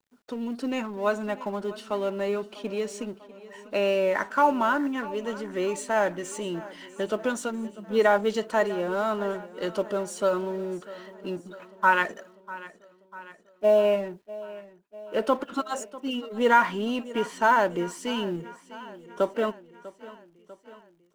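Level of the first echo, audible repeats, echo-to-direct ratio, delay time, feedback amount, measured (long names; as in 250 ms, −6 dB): −18.0 dB, 4, −16.0 dB, 646 ms, 59%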